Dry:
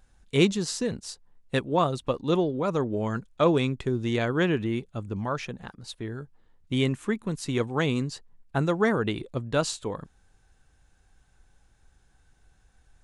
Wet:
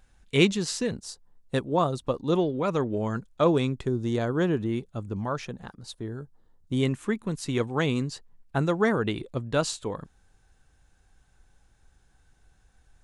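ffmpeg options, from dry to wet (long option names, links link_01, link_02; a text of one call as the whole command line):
ffmpeg -i in.wav -af "asetnsamples=nb_out_samples=441:pad=0,asendcmd='0.91 equalizer g -6.5;2.36 equalizer g 4;2.98 equalizer g -4;3.88 equalizer g -11;4.69 equalizer g -4.5;5.93 equalizer g -11.5;6.83 equalizer g -0.5',equalizer=frequency=2400:width_type=o:width=1.1:gain=3.5" out.wav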